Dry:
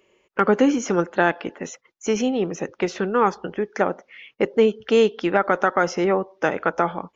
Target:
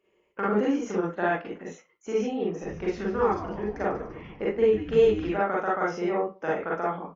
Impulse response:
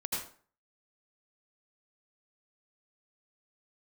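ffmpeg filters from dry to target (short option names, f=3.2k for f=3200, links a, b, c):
-filter_complex "[0:a]highshelf=f=3.3k:g=-8.5,asplit=3[a][b][c];[a]afade=t=out:st=2.61:d=0.02[d];[b]asplit=8[e][f][g][h][i][j][k][l];[f]adelay=148,afreqshift=-140,volume=-11dB[m];[g]adelay=296,afreqshift=-280,volume=-15.2dB[n];[h]adelay=444,afreqshift=-420,volume=-19.3dB[o];[i]adelay=592,afreqshift=-560,volume=-23.5dB[p];[j]adelay=740,afreqshift=-700,volume=-27.6dB[q];[k]adelay=888,afreqshift=-840,volume=-31.8dB[r];[l]adelay=1036,afreqshift=-980,volume=-35.9dB[s];[e][m][n][o][p][q][r][s]amix=inputs=8:normalize=0,afade=t=in:st=2.61:d=0.02,afade=t=out:st=5.31:d=0.02[t];[c]afade=t=in:st=5.31:d=0.02[u];[d][t][u]amix=inputs=3:normalize=0[v];[1:a]atrim=start_sample=2205,asetrate=88200,aresample=44100[w];[v][w]afir=irnorm=-1:irlink=0,volume=-4dB"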